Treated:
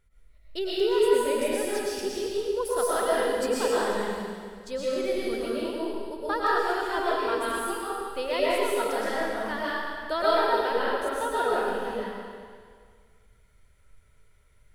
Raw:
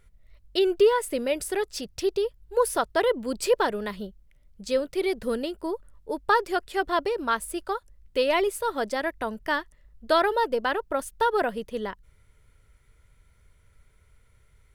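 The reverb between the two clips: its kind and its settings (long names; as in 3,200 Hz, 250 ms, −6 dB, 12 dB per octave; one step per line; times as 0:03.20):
comb and all-pass reverb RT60 1.9 s, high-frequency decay 1×, pre-delay 80 ms, DRR −8 dB
level −9 dB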